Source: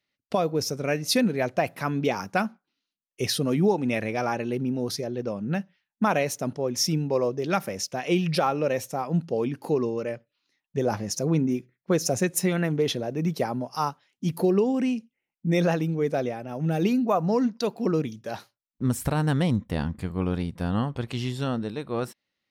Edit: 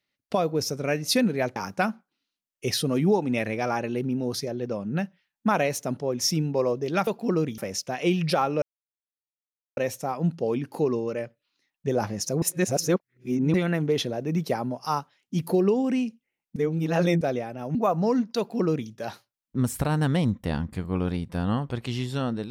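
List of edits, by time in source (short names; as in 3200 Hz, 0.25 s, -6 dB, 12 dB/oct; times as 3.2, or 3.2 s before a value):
1.56–2.12 cut
8.67 insert silence 1.15 s
11.32–12.44 reverse
15.46–16.11 reverse
16.65–17.01 cut
17.64–18.15 copy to 7.63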